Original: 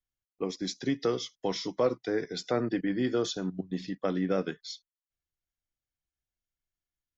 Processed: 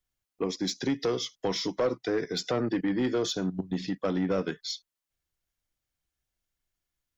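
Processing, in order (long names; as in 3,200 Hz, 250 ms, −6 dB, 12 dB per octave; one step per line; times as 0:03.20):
in parallel at +1.5 dB: downward compressor, threshold −34 dBFS, peak gain reduction 12.5 dB
on the sum: soft clipping −19.5 dBFS, distortion −15 dB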